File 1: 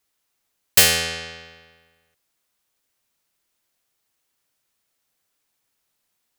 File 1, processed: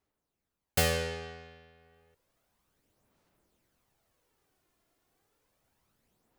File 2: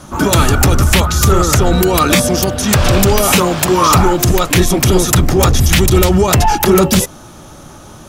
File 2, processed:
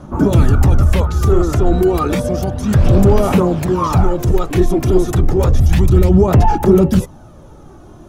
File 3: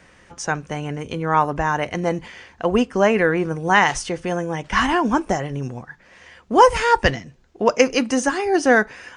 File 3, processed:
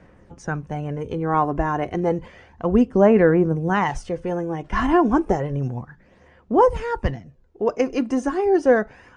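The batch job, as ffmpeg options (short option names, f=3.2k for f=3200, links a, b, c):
-af "aphaser=in_gain=1:out_gain=1:delay=2.9:decay=0.41:speed=0.31:type=sinusoidal,dynaudnorm=f=580:g=3:m=10.5dB,tiltshelf=f=1.3k:g=8.5,volume=-8.5dB"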